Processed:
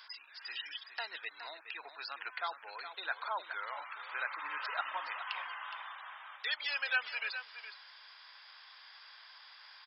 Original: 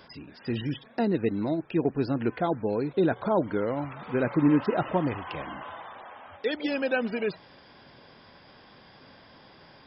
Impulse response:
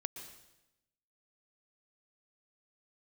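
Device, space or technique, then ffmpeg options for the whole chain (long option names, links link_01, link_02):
headphones lying on a table: -filter_complex "[0:a]asplit=3[link_01][link_02][link_03];[link_01]afade=type=out:start_time=4.91:duration=0.02[link_04];[link_02]bandreject=frequency=185.4:width_type=h:width=4,bandreject=frequency=370.8:width_type=h:width=4,bandreject=frequency=556.2:width_type=h:width=4,bandreject=frequency=741.6:width_type=h:width=4,bandreject=frequency=927:width_type=h:width=4,bandreject=frequency=1112.4:width_type=h:width=4,bandreject=frequency=1297.8:width_type=h:width=4,bandreject=frequency=1483.2:width_type=h:width=4,bandreject=frequency=1668.6:width_type=h:width=4,bandreject=frequency=1854:width_type=h:width=4,bandreject=frequency=2039.4:width_type=h:width=4,bandreject=frequency=2224.8:width_type=h:width=4,bandreject=frequency=2410.2:width_type=h:width=4,bandreject=frequency=2595.6:width_type=h:width=4,bandreject=frequency=2781:width_type=h:width=4,bandreject=frequency=2966.4:width_type=h:width=4,bandreject=frequency=3151.8:width_type=h:width=4,bandreject=frequency=3337.2:width_type=h:width=4,bandreject=frequency=3522.6:width_type=h:width=4,bandreject=frequency=3708:width_type=h:width=4,bandreject=frequency=3893.4:width_type=h:width=4,bandreject=frequency=4078.8:width_type=h:width=4,bandreject=frequency=4264.2:width_type=h:width=4,bandreject=frequency=4449.6:width_type=h:width=4,bandreject=frequency=4635:width_type=h:width=4,bandreject=frequency=4820.4:width_type=h:width=4,bandreject=frequency=5005.8:width_type=h:width=4,afade=type=in:start_time=4.91:duration=0.02,afade=type=out:start_time=5.56:duration=0.02[link_05];[link_03]afade=type=in:start_time=5.56:duration=0.02[link_06];[link_04][link_05][link_06]amix=inputs=3:normalize=0,highpass=frequency=1100:width=0.5412,highpass=frequency=1100:width=1.3066,equalizer=frequency=4300:width_type=o:width=0.39:gain=5.5,aecho=1:1:416:0.299"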